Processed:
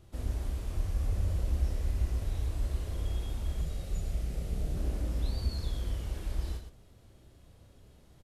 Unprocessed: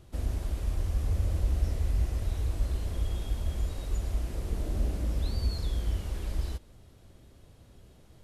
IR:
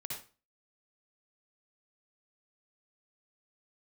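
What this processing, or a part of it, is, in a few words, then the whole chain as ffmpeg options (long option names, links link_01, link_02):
slapback doubling: -filter_complex "[0:a]asplit=3[link_01][link_02][link_03];[link_02]adelay=31,volume=-5.5dB[link_04];[link_03]adelay=119,volume=-7.5dB[link_05];[link_01][link_04][link_05]amix=inputs=3:normalize=0,asettb=1/sr,asplit=3[link_06][link_07][link_08];[link_06]atrim=end=3.614[link_09];[link_07]atrim=start=3.61:end=4.77,asetpts=PTS-STARTPTS,afade=type=in:duration=0.004:curve=qsin,afade=type=out:start_time=1.156:duration=0.004:curve=qsin,equalizer=frequency=160:width_type=o:width=0.33:gain=10,equalizer=frequency=315:width_type=o:width=0.33:gain=-5,equalizer=frequency=1000:width_type=o:width=0.33:gain=-9,equalizer=frequency=1600:width_type=o:width=0.33:gain=-3[link_10];[link_08]atrim=start=4.766[link_11];[link_09][link_10]acrossfade=duration=0.004:curve1=hsin:curve2=qsin[link_12];[link_12][link_11]acrossfade=duration=0.004:curve1=qsin:curve2=hsin,volume=-4dB"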